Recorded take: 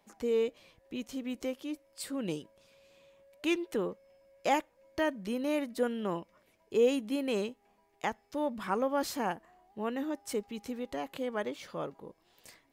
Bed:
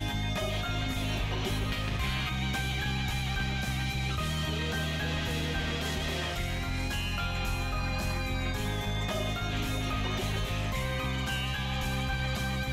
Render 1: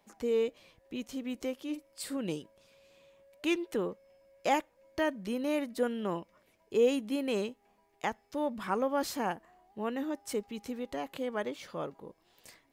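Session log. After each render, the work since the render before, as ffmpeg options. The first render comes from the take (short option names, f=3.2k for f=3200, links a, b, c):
-filter_complex "[0:a]asettb=1/sr,asplit=3[a][b][c];[a]atrim=end=1.644[d];[b]atrim=start=1.64:end=2.17,asetpts=PTS-STARTPTS,afade=t=in:d=0.004:c=qsin,afade=t=out:st=0.526:d=0.004:c=qsin,asplit=2[e][f];[f]adelay=47,volume=-8dB[g];[e][g]amix=inputs=2:normalize=0,atrim=end_sample=23373[h];[c]atrim=start=2.166[i];[d][h]acrossfade=d=0.004:c1=hsin:c2=qsin[j];[j][i]acrossfade=d=0.004:c1=qsin:c2=hsin"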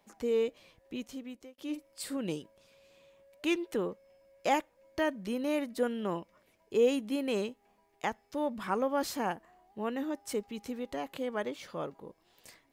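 -filter_complex "[0:a]asplit=2[a][b];[a]atrim=end=1.58,asetpts=PTS-STARTPTS,afade=t=out:st=0.94:d=0.64[c];[b]atrim=start=1.58,asetpts=PTS-STARTPTS,afade=t=in:d=0.004:c=hsin[d];[c][d]concat=n=2:v=0:a=1"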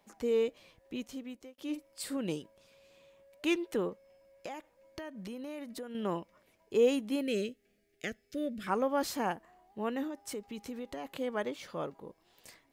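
-filter_complex "[0:a]asettb=1/sr,asplit=3[a][b][c];[a]atrim=end=3.894[d];[b]atrim=start=3.89:end=5.95,asetpts=PTS-STARTPTS,afade=t=in:d=0.004:c=qsin,afade=t=out:st=2.056:d=0.004:c=qsin,acompressor=threshold=-39dB:ratio=6:attack=3.2:release=140:knee=1:detection=peak[e];[c]atrim=start=5.946[f];[d][e]acrossfade=d=0.004:c1=hsin:c2=qsin[g];[g][f]acrossfade=d=0.004:c1=qsin:c2=hsin,asettb=1/sr,asplit=3[h][i][j];[h]atrim=end=7.214[k];[i]atrim=start=7.21:end=8.67,asetpts=PTS-STARTPTS,afade=t=in:d=0.004:c=qsin,afade=t=out:st=1.456:d=0.004:c=qsin,asuperstop=centerf=940:order=4:qfactor=0.88[l];[j]atrim=start=8.666[m];[k][l]acrossfade=d=0.004:c1=hsin:c2=qsin[n];[n][m]acrossfade=d=0.004:c1=qsin:c2=hsin,asettb=1/sr,asplit=3[o][p][q];[o]atrim=end=10.074[r];[p]atrim=start=10.07:end=11.05,asetpts=PTS-STARTPTS,afade=t=in:d=0.004:c=qsin,afade=t=out:st=0.976:d=0.004:c=qsin,acompressor=threshold=-37dB:ratio=3:attack=3.2:release=140:knee=1:detection=peak[s];[q]atrim=start=11.046[t];[r][s]acrossfade=d=0.004:c1=hsin:c2=qsin[u];[u][t]acrossfade=d=0.004:c1=qsin:c2=hsin"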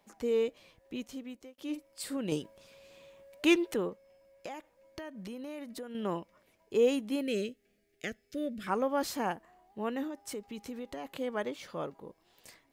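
-filter_complex "[0:a]asplit=3[a][b][c];[a]atrim=end=2.322[d];[b]atrim=start=2.318:end=3.742,asetpts=PTS-STARTPTS,volume=5.5dB[e];[c]atrim=start=3.738[f];[d][e]acrossfade=d=0.004:c1=hsin:c2=hsin[g];[g][f]acrossfade=d=0.004:c1=hsin:c2=hsin"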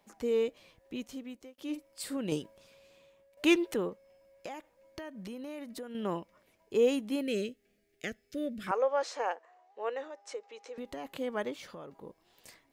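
-filter_complex "[0:a]asettb=1/sr,asplit=3[a][b][c];[a]atrim=end=8.714[d];[b]atrim=start=8.71:end=10.78,asetpts=PTS-STARTPTS,afade=t=in:d=0.004:c=qsin,afade=t=out:st=2.066:d=0.004:c=qsin,highpass=f=480:w=0.5412,highpass=f=480:w=1.3066,equalizer=f=490:t=q:w=4:g=8,equalizer=f=3.2k:t=q:w=4:g=-4,equalizer=f=4.7k:t=q:w=4:g=-4,lowpass=f=6.6k:w=0.5412,lowpass=f=6.6k:w=1.3066[e];[c]atrim=start=10.776[f];[d][e]acrossfade=d=0.004:c1=hsin:c2=qsin[g];[g][f]acrossfade=d=0.004:c1=qsin:c2=hsin,asettb=1/sr,asplit=3[h][i][j];[h]atrim=end=11.554[k];[i]atrim=start=11.55:end=12.01,asetpts=PTS-STARTPTS,afade=t=in:d=0.004:c=qsin,afade=t=out:st=0.456:d=0.004:c=qsin,acompressor=threshold=-42dB:ratio=6:attack=3.2:release=140:knee=1:detection=peak[l];[j]atrim=start=12.006[m];[k][l]acrossfade=d=0.004:c1=hsin:c2=qsin[n];[n][m]acrossfade=d=0.004:c1=qsin:c2=hsin,asplit=2[o][p];[o]atrim=end=3.37,asetpts=PTS-STARTPTS,afade=t=out:st=2.32:d=1.05:silence=0.266073[q];[p]atrim=start=3.37,asetpts=PTS-STARTPTS,afade=t=in:d=0.004:c=hsin:silence=0.266073[r];[q][r]concat=n=2:v=0:a=1"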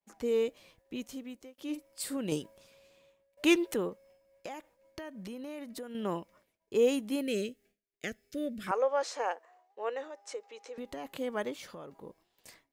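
-af "agate=range=-33dB:threshold=-58dB:ratio=3:detection=peak,adynamicequalizer=threshold=0.002:dfrequency=5900:dqfactor=0.7:tfrequency=5900:tqfactor=0.7:attack=5:release=100:ratio=0.375:range=2.5:mode=boostabove:tftype=highshelf"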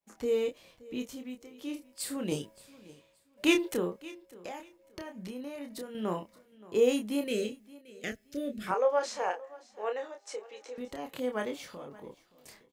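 -filter_complex "[0:a]asplit=2[a][b];[b]adelay=28,volume=-5dB[c];[a][c]amix=inputs=2:normalize=0,aecho=1:1:574|1148:0.0944|0.0236"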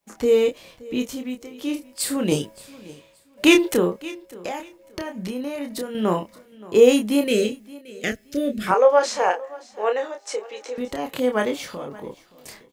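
-af "volume=11.5dB,alimiter=limit=-2dB:level=0:latency=1"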